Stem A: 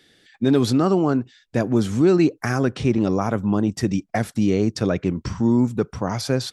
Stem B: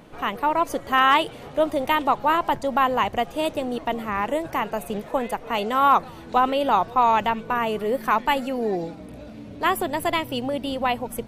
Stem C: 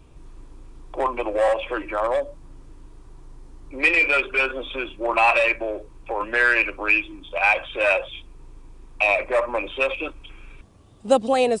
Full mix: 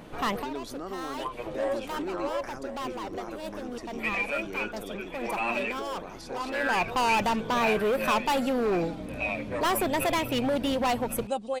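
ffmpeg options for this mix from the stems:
ffmpeg -i stem1.wav -i stem2.wav -i stem3.wav -filter_complex "[0:a]highpass=310,volume=-16.5dB,asplit=3[link_01][link_02][link_03];[link_02]volume=-7dB[link_04];[1:a]asoftclip=type=hard:threshold=-24.5dB,volume=2dB[link_05];[2:a]flanger=delay=3.4:depth=3.5:regen=36:speed=0.47:shape=triangular,adelay=200,volume=-8.5dB,asplit=2[link_06][link_07];[link_07]volume=-13.5dB[link_08];[link_03]apad=whole_len=497046[link_09];[link_05][link_09]sidechaincompress=threshold=-48dB:ratio=5:attack=5.1:release=497[link_10];[link_04][link_08]amix=inputs=2:normalize=0,aecho=0:1:1088:1[link_11];[link_01][link_10][link_06][link_11]amix=inputs=4:normalize=0" out.wav

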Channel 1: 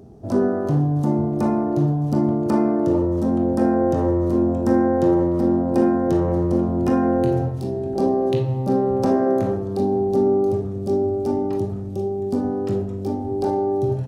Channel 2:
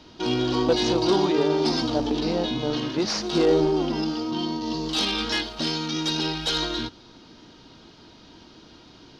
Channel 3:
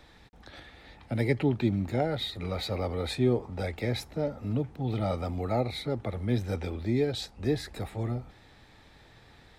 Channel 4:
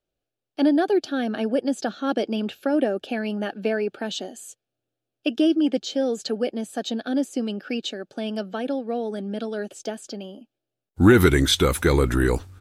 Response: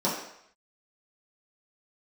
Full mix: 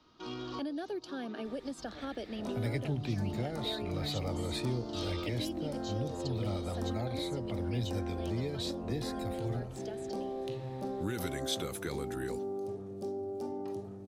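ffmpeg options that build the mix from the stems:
-filter_complex "[0:a]highpass=frequency=330:poles=1,adelay=2150,volume=-10.5dB[link_01];[1:a]equalizer=frequency=1200:width_type=o:width=0.27:gain=14.5,volume=-17dB[link_02];[2:a]adelay=1450,volume=-2dB[link_03];[3:a]highpass=130,volume=-13dB,asplit=2[link_04][link_05];[link_05]apad=whole_len=405468[link_06];[link_02][link_06]sidechaincompress=threshold=-46dB:ratio=12:attack=16:release=390[link_07];[link_01][link_07][link_03][link_04]amix=inputs=4:normalize=0,acrossover=split=130|3000[link_08][link_09][link_10];[link_09]acompressor=threshold=-35dB:ratio=6[link_11];[link_08][link_11][link_10]amix=inputs=3:normalize=0"

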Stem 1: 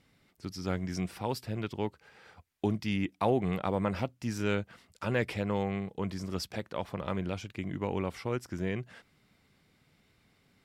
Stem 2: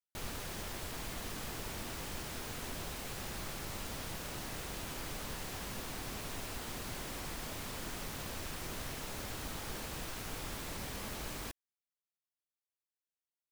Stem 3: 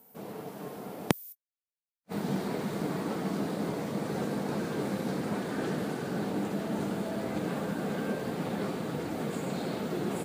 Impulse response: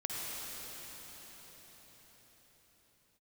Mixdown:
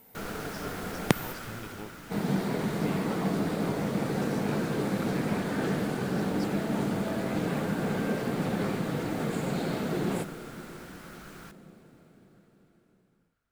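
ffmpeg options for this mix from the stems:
-filter_complex "[0:a]acompressor=threshold=-43dB:ratio=2.5,volume=-1dB[link_01];[1:a]equalizer=frequency=1400:width=3.4:gain=14,volume=-2.5dB,afade=type=out:start_time=1.2:duration=0.71:silence=0.398107,asplit=2[link_02][link_03];[link_03]volume=-17dB[link_04];[2:a]equalizer=frequency=120:width=0.97:gain=4,volume=0dB,asplit=2[link_05][link_06];[link_06]volume=-13dB[link_07];[3:a]atrim=start_sample=2205[link_08];[link_04][link_07]amix=inputs=2:normalize=0[link_09];[link_09][link_08]afir=irnorm=-1:irlink=0[link_10];[link_01][link_02][link_05][link_10]amix=inputs=4:normalize=0,equalizer=frequency=2000:width=1.5:gain=2.5"

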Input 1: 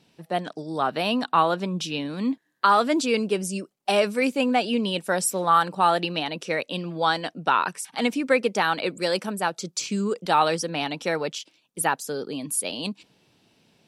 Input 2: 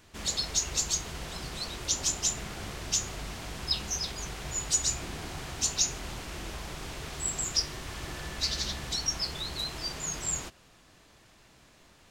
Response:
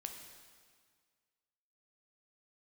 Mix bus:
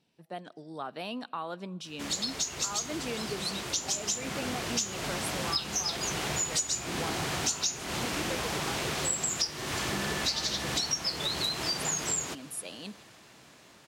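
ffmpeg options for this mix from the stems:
-filter_complex "[0:a]alimiter=limit=-13.5dB:level=0:latency=1:release=192,volume=-13dB,asplit=2[link_01][link_02];[link_02]volume=-15dB[link_03];[1:a]highpass=130,dynaudnorm=framelen=670:gausssize=9:maxgain=11.5dB,adelay=1850,volume=2.5dB[link_04];[2:a]atrim=start_sample=2205[link_05];[link_03][link_05]afir=irnorm=-1:irlink=0[link_06];[link_01][link_04][link_06]amix=inputs=3:normalize=0,acompressor=threshold=-28dB:ratio=6"

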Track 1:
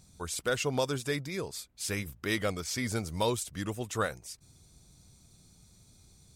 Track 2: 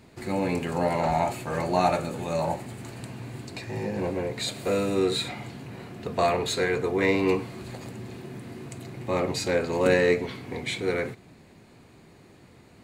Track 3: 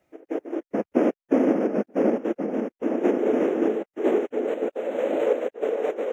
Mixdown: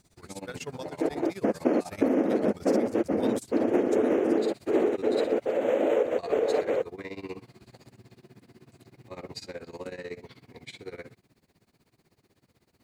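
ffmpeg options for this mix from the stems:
ffmpeg -i stem1.wav -i stem2.wav -i stem3.wav -filter_complex "[0:a]tremolo=f=1.5:d=0.53,volume=-2dB[link_01];[1:a]equalizer=frequency=4900:width_type=o:width=0.45:gain=6.5,acrusher=bits=9:mix=0:aa=0.000001,volume=-11dB[link_02];[2:a]adelay=700,volume=2dB[link_03];[link_01][link_02]amix=inputs=2:normalize=0,tremolo=f=16:d=0.91,alimiter=level_in=3dB:limit=-24dB:level=0:latency=1:release=32,volume=-3dB,volume=0dB[link_04];[link_03][link_04]amix=inputs=2:normalize=0,acompressor=threshold=-20dB:ratio=6" out.wav

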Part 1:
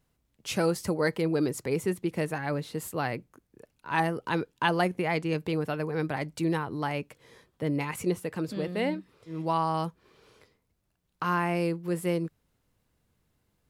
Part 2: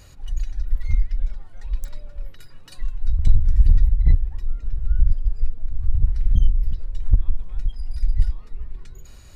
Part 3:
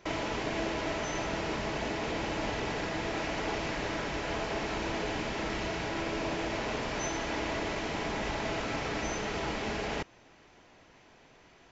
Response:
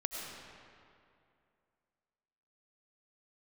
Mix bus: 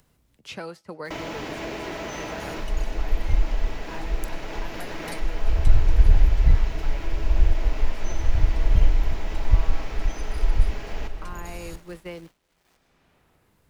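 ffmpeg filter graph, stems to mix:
-filter_complex "[0:a]acrossover=split=190|620|5100[link_01][link_02][link_03][link_04];[link_01]acompressor=threshold=-47dB:ratio=4[link_05];[link_02]acompressor=threshold=-38dB:ratio=4[link_06];[link_03]acompressor=threshold=-31dB:ratio=4[link_07];[link_04]acompressor=threshold=-58dB:ratio=4[link_08];[link_05][link_06][link_07][link_08]amix=inputs=4:normalize=0,volume=-11.5dB,asplit=2[link_09][link_10];[link_10]volume=-23.5dB[link_11];[1:a]equalizer=frequency=11000:width=1.5:gain=10,adelay=2400,volume=-2.5dB,asplit=2[link_12][link_13];[link_13]volume=-15dB[link_14];[2:a]acrusher=bits=8:mix=0:aa=0.000001,adelay=1050,volume=-9.5dB,asplit=2[link_15][link_16];[link_16]volume=-3dB[link_17];[3:a]atrim=start_sample=2205[link_18];[link_11][link_14][link_17]amix=inputs=3:normalize=0[link_19];[link_19][link_18]afir=irnorm=-1:irlink=0[link_20];[link_09][link_12][link_15][link_20]amix=inputs=4:normalize=0,agate=range=-33dB:threshold=-41dB:ratio=3:detection=peak,acompressor=mode=upward:threshold=-25dB:ratio=2.5"

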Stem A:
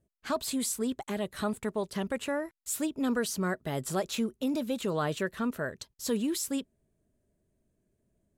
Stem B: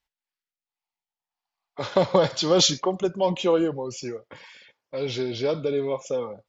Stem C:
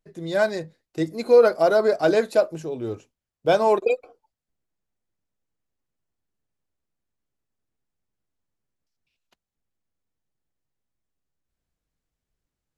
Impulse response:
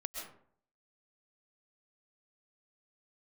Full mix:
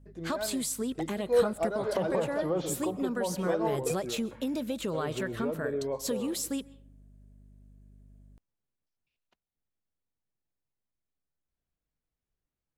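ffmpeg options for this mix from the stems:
-filter_complex "[0:a]aeval=exprs='val(0)+0.00178*(sin(2*PI*50*n/s)+sin(2*PI*2*50*n/s)/2+sin(2*PI*3*50*n/s)/3+sin(2*PI*4*50*n/s)/4+sin(2*PI*5*50*n/s)/5)':channel_layout=same,volume=1dB,asplit=3[link_01][link_02][link_03];[link_02]volume=-20dB[link_04];[1:a]lowpass=1300,volume=-4.5dB,asplit=2[link_05][link_06];[link_06]volume=-15.5dB[link_07];[2:a]lowpass=frequency=2900:poles=1,volume=-5.5dB[link_08];[link_03]apad=whole_len=563481[link_09];[link_08][link_09]sidechaincompress=threshold=-36dB:ratio=8:attack=11:release=277[link_10];[link_01][link_05]amix=inputs=2:normalize=0,acompressor=threshold=-30dB:ratio=4,volume=0dB[link_11];[3:a]atrim=start_sample=2205[link_12];[link_04][link_07]amix=inputs=2:normalize=0[link_13];[link_13][link_12]afir=irnorm=-1:irlink=0[link_14];[link_10][link_11][link_14]amix=inputs=3:normalize=0"

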